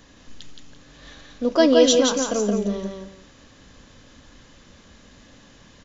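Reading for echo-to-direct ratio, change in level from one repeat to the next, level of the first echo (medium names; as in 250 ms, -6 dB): -3.5 dB, -11.5 dB, -4.0 dB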